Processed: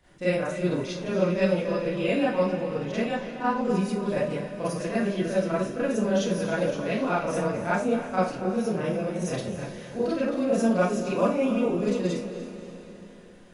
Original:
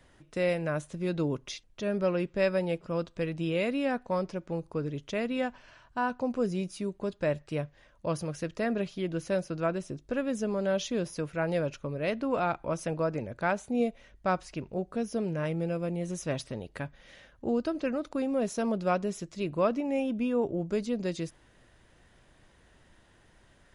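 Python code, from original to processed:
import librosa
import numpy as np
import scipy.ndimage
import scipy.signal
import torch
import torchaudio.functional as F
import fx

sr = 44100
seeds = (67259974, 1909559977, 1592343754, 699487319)

y = fx.echo_diffused(x, sr, ms=498, feedback_pct=58, wet_db=-10.5)
y = fx.stretch_grains(y, sr, factor=0.57, grain_ms=58.0)
y = fx.rev_schroeder(y, sr, rt60_s=0.35, comb_ms=31, drr_db=-9.0)
y = y * 10.0 ** (-4.0 / 20.0)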